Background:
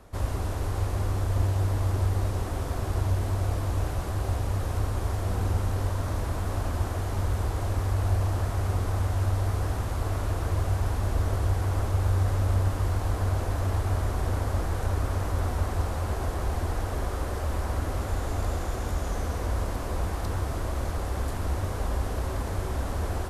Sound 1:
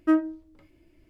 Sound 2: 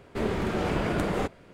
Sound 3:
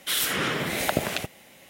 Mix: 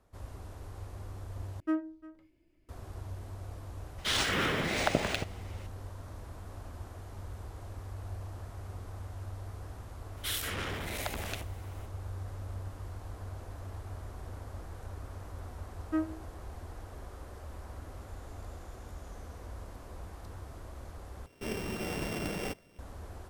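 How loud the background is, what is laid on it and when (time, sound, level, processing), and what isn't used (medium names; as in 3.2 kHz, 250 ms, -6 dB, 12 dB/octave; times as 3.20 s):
background -16 dB
1.60 s: replace with 1 -10 dB + delay 350 ms -19 dB
3.98 s: add 3 -3 dB + decimation joined by straight lines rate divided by 3×
10.17 s: add 3 -8.5 dB + transformer saturation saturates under 3.5 kHz
15.85 s: add 1 -10.5 dB
21.26 s: replace with 2 -8.5 dB + sorted samples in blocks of 16 samples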